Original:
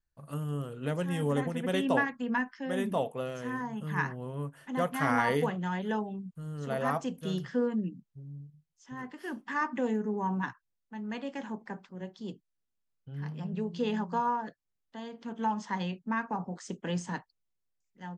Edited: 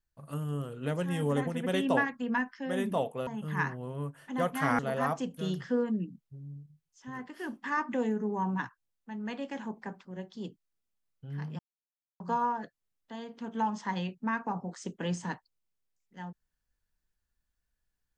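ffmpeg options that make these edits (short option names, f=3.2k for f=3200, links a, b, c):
-filter_complex "[0:a]asplit=5[a][b][c][d][e];[a]atrim=end=3.272[f];[b]atrim=start=3.658:end=5.182[g];[c]atrim=start=6.628:end=13.43,asetpts=PTS-STARTPTS,afade=t=out:st=6.798:d=0.004:c=hsin[h];[d]atrim=start=13.43:end=14.04,asetpts=PTS-STARTPTS,volume=0[i];[e]atrim=start=14.04,asetpts=PTS-STARTPTS,afade=t=in:d=0.004:c=hsin[j];[f][g]acrossfade=d=0.004:c1=hsin:c2=hsin[k];[h][i][j]concat=n=3:v=0:a=1[l];[k][l]acrossfade=d=0.004:c1=hsin:c2=hsin"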